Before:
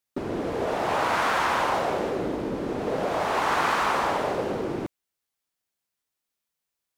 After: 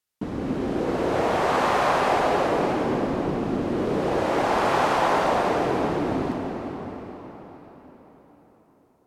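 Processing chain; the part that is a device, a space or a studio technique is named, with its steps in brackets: slowed and reverbed (tape speed -23%; reverberation RT60 4.8 s, pre-delay 24 ms, DRR 0.5 dB)

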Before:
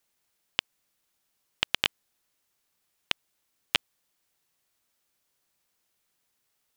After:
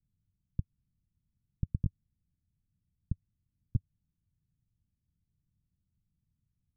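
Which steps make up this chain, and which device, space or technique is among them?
the neighbour's flat through the wall (low-pass 160 Hz 24 dB/octave; peaking EQ 91 Hz +3 dB 0.68 oct); trim +17 dB

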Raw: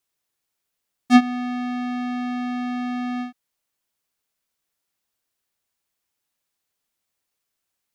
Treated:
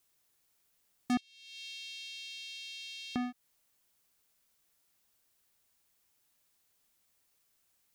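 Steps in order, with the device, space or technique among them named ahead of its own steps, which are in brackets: 1.17–3.16 s: steep high-pass 2.8 kHz 48 dB/octave; ASMR close-microphone chain (bass shelf 160 Hz +4 dB; compression 4:1, threshold -37 dBFS, peak gain reduction 23 dB; treble shelf 6.8 kHz +5 dB); trim +2.5 dB

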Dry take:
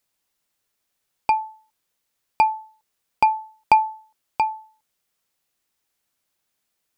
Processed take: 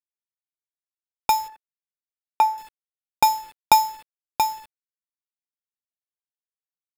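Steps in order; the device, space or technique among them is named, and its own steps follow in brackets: early 8-bit sampler (sample-rate reducer 6.1 kHz, jitter 0%; bit crusher 8-bit); 1.48–2.58 s: three-band isolator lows -14 dB, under 300 Hz, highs -14 dB, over 2.2 kHz

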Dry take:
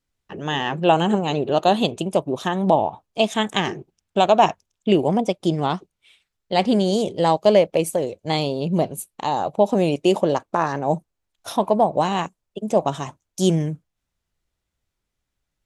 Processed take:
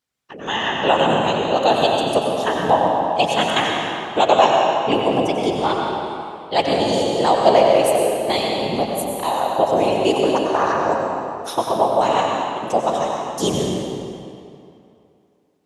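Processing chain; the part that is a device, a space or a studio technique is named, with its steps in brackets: whispering ghost (whisper effect; high-pass 460 Hz 6 dB/octave; reverberation RT60 2.6 s, pre-delay 85 ms, DRR -1 dB); trim +2 dB

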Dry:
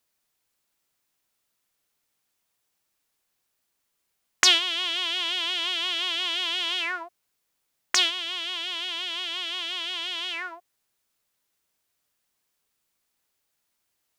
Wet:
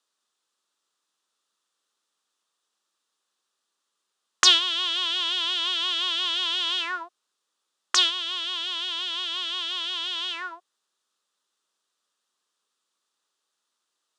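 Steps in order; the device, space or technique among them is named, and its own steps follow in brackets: television speaker (cabinet simulation 230–9000 Hz, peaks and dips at 270 Hz -5 dB, 690 Hz -5 dB, 1.2 kHz +7 dB, 2.2 kHz -9 dB, 3.6 kHz +5 dB)

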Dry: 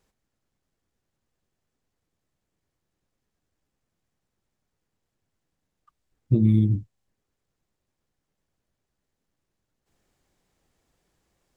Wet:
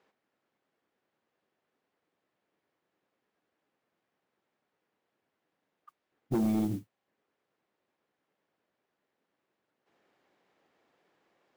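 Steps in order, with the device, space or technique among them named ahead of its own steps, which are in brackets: carbon microphone (band-pass 320–2800 Hz; saturation -28.5 dBFS, distortion -11 dB; modulation noise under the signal 24 dB); trim +5 dB

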